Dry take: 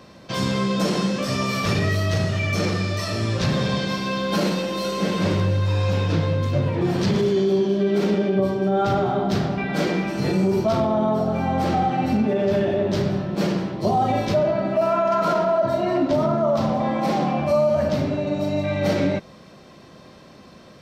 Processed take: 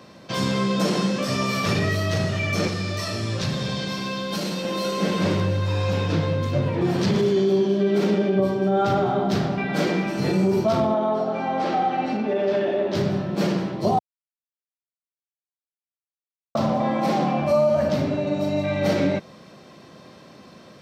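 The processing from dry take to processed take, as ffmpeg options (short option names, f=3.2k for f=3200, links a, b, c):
-filter_complex "[0:a]asettb=1/sr,asplit=3[a][b][c];[a]atrim=end=2.674[d];[b]atrim=start=2.67:end=4.65,asetpts=PTS-STARTPTS,afade=t=in:d=0.004:c=qsin,afade=t=out:st=1.976:d=0.004:c=qsin,acrossover=split=130|3000[e][f][g];[f]acompressor=threshold=-26dB:ratio=6:attack=3.2:release=140:knee=2.83:detection=peak[h];[e][h][g]amix=inputs=3:normalize=0[i];[c]atrim=start=4.646[j];[d][i]acrossfade=d=0.004:c1=hsin:c2=qsin[k];[k][j]acrossfade=d=0.004:c1=qsin:c2=hsin,asettb=1/sr,asplit=3[l][m][n];[l]atrim=end=10.944[o];[m]atrim=start=10.94:end=12.95,asetpts=PTS-STARTPTS,afade=t=in:d=0.004:c=qsin,afade=t=out:st=2.006:d=0.004:c=qsin,highpass=290,lowpass=5.1k[p];[n]atrim=start=12.946[q];[o][p]acrossfade=d=0.004:c1=hsin:c2=qsin[r];[r][q]acrossfade=d=0.004:c1=qsin:c2=hsin,asplit=3[s][t][u];[s]atrim=end=13.99,asetpts=PTS-STARTPTS,afade=t=out:st=13.986:d=0.004:c=hsin[v];[t]atrim=start=13.99:end=16.55,asetpts=PTS-STARTPTS,volume=0[w];[u]atrim=start=16.55,asetpts=PTS-STARTPTS,afade=t=in:d=0.004:c=hsin[x];[v][w][x]concat=n=3:v=0:a=1,highpass=99"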